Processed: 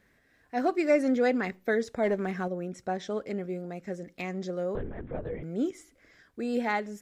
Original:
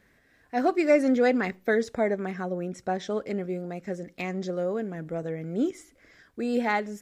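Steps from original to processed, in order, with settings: 2.03–2.48 sample leveller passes 1; 4.75–5.43 LPC vocoder at 8 kHz whisper; gain -3 dB

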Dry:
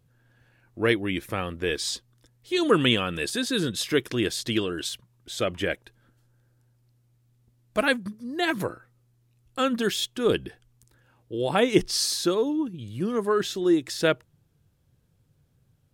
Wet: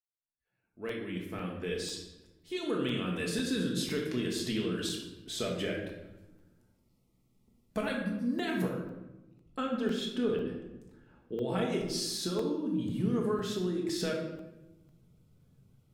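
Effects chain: opening faded in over 4.50 s; 8.63–11.49 LPF 2400 Hz 6 dB/oct; compressor 6:1, threshold -31 dBFS, peak gain reduction 16.5 dB; bell 250 Hz +4.5 dB 1.8 oct; shoebox room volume 450 m³, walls mixed, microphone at 1.5 m; spectral noise reduction 22 dB; crackling interface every 0.50 s, samples 128, zero, from 0.89; gain -4.5 dB

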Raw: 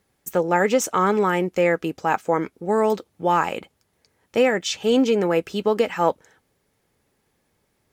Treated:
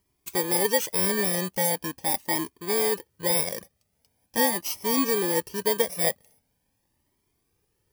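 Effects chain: FFT order left unsorted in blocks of 32 samples; cascading flanger rising 0.42 Hz

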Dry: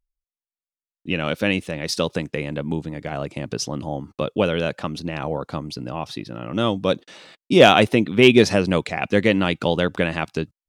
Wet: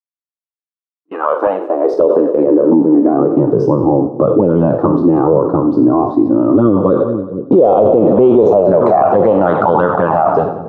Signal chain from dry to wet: spectral trails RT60 0.36 s; high-pass sweep 1300 Hz -> 100 Hz, 1–3.88; envelope flanger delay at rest 6.7 ms, full sweep at -11 dBFS; in parallel at -10.5 dB: Schmitt trigger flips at -11.5 dBFS; on the sum: gate -35 dBFS, range -25 dB; resonant high shelf 1600 Hz -12.5 dB, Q 3; on a send: split-band echo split 370 Hz, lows 0.466 s, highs 93 ms, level -13.5 dB; on the sum: band-pass sweep 320 Hz -> 750 Hz, 6.42–9.22; maximiser +27 dB; gain -1 dB

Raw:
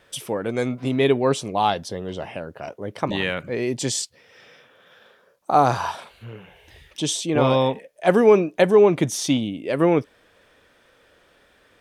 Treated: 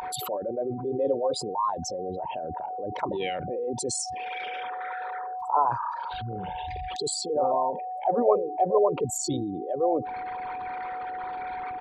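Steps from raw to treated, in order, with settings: formant sharpening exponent 3; whine 740 Hz -24 dBFS; formant shift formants +4 st; gain -6.5 dB

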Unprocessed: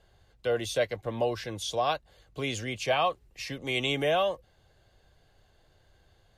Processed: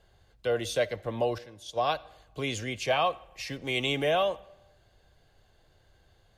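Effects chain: 1.38–1.93 gate -32 dBFS, range -13 dB; 3.5–4.1 backlash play -51 dBFS; reverb RT60 0.95 s, pre-delay 15 ms, DRR 20 dB

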